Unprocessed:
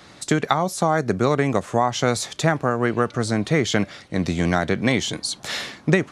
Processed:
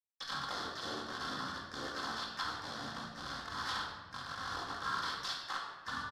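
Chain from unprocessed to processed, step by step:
hold until the input has moved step −18 dBFS
harmonic and percussive parts rebalanced percussive −15 dB
downward compressor 3 to 1, threshold −32 dBFS, peak gain reduction 12 dB
pitch shifter −9 semitones
pair of resonant band-passes 2,500 Hz, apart 1.6 octaves
pitch-shifted copies added −4 semitones 0 dB, +3 semitones −4 dB
rectangular room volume 910 cubic metres, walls mixed, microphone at 2.1 metres
level +7.5 dB

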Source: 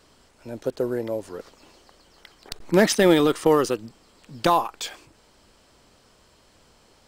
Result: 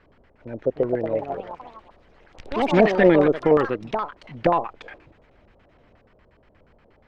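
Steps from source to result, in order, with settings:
auto-filter low-pass square 8.4 Hz 600–2,000 Hz
delay with pitch and tempo change per echo 399 ms, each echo +4 semitones, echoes 3, each echo −6 dB
low-shelf EQ 230 Hz +7.5 dB
level −3.5 dB

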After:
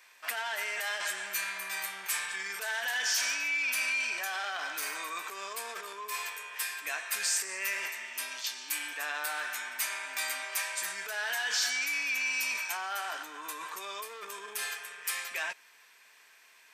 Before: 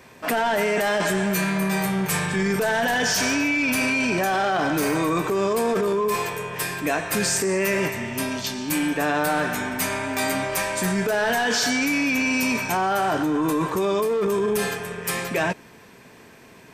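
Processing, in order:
high-pass filter 1,500 Hz 12 dB per octave
level −5.5 dB

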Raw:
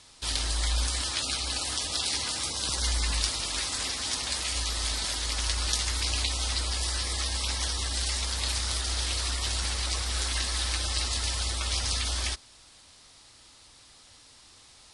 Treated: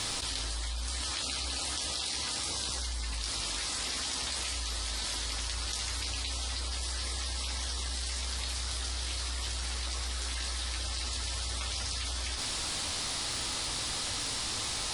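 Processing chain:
flanger 0.17 Hz, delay 9.8 ms, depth 9.5 ms, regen −43%
surface crackle 120 per second −62 dBFS
envelope flattener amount 100%
level −6.5 dB

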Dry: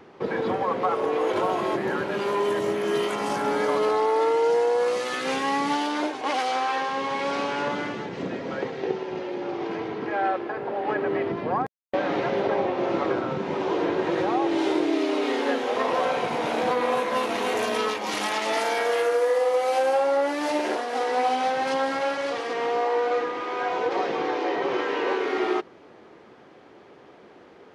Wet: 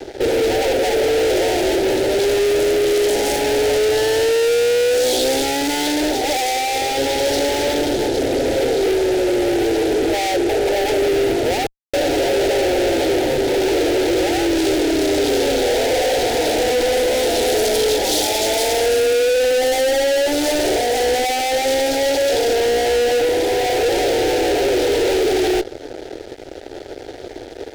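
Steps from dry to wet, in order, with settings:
elliptic band-stop filter 930–3,400 Hz
fuzz pedal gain 42 dB, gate −51 dBFS
phaser with its sweep stopped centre 450 Hz, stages 4
level −1 dB

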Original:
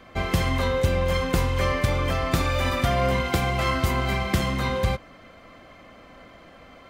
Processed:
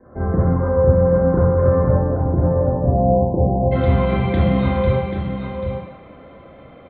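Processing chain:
Butterworth low-pass 1,700 Hz 72 dB per octave, from 0:01.88 890 Hz, from 0:03.71 3,700 Hz
single-tap delay 788 ms −8 dB
convolution reverb RT60 1.0 s, pre-delay 30 ms, DRR −5.5 dB
level −10 dB

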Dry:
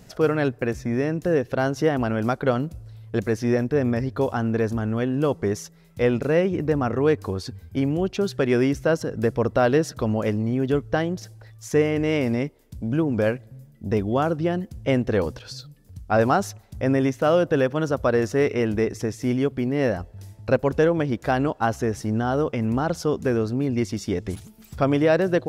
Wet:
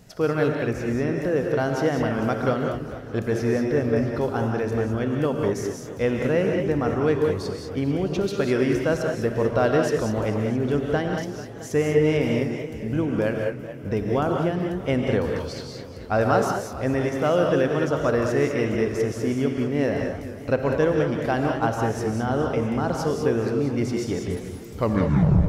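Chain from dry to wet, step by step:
turntable brake at the end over 0.75 s
reverb whose tail is shaped and stops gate 220 ms rising, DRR 2 dB
feedback echo with a swinging delay time 221 ms, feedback 75%, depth 152 cents, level −14.5 dB
level −2.5 dB

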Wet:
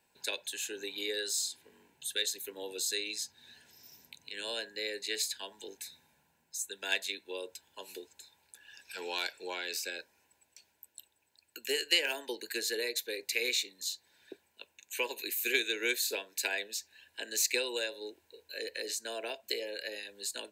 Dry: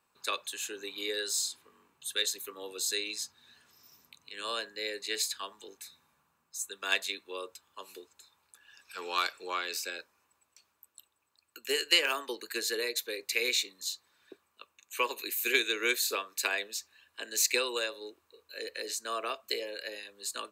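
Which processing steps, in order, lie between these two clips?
in parallel at +3 dB: downward compressor, threshold −43 dBFS, peak gain reduction 22 dB
on the sum: Butterworth band-reject 1,200 Hz, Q 2.4
level −4 dB

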